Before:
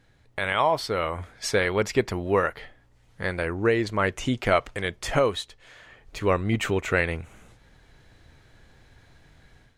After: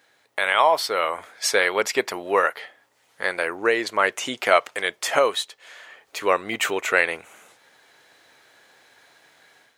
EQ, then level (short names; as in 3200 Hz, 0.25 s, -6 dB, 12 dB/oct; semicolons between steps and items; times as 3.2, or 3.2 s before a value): HPF 530 Hz 12 dB/oct; high shelf 12000 Hz +10.5 dB; +5.5 dB